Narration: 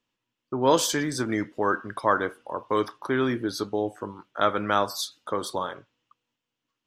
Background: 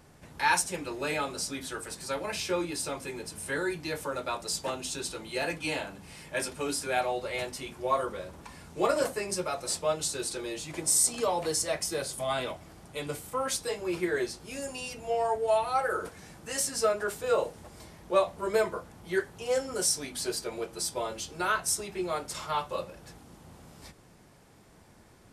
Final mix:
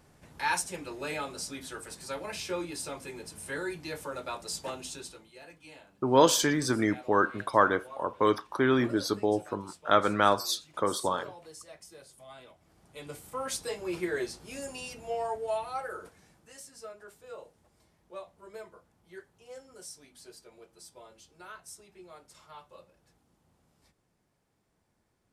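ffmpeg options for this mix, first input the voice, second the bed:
-filter_complex "[0:a]adelay=5500,volume=1[s0];[1:a]volume=4.22,afade=t=out:st=4.81:d=0.51:silence=0.177828,afade=t=in:st=12.56:d=1.09:silence=0.149624,afade=t=out:st=14.77:d=1.83:silence=0.158489[s1];[s0][s1]amix=inputs=2:normalize=0"

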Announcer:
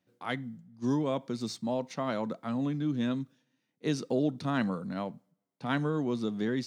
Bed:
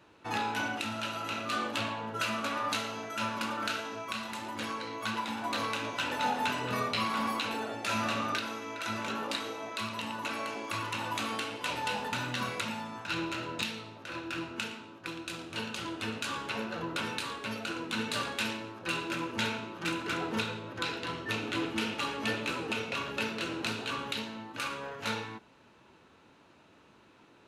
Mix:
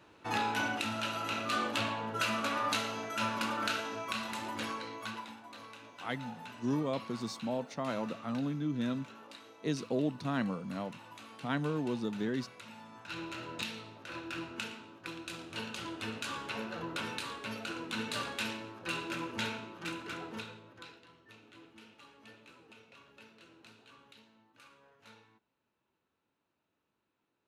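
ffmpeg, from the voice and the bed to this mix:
-filter_complex "[0:a]adelay=5800,volume=0.668[s0];[1:a]volume=4.73,afade=t=out:st=4.49:d=0.94:silence=0.141254,afade=t=in:st=12.58:d=1.19:silence=0.211349,afade=t=out:st=19.3:d=1.78:silence=0.1[s1];[s0][s1]amix=inputs=2:normalize=0"

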